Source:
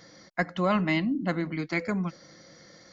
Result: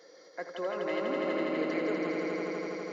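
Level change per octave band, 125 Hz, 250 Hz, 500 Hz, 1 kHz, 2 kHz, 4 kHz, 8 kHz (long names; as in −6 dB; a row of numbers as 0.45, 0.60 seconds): −16.0 dB, −5.5 dB, +2.0 dB, −5.5 dB, −5.5 dB, −5.0 dB, can't be measured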